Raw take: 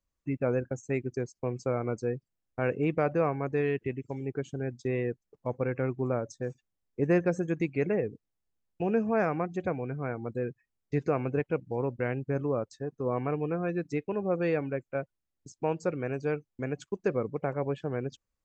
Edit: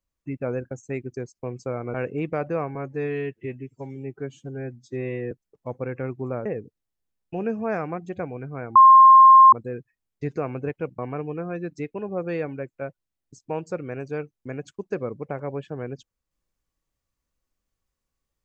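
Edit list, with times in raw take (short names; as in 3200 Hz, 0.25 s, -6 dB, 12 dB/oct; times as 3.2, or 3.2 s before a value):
1.94–2.59 cut
3.4–5.11 stretch 1.5×
6.25–7.93 cut
10.23 add tone 1060 Hz -7 dBFS 0.77 s
11.69–13.12 cut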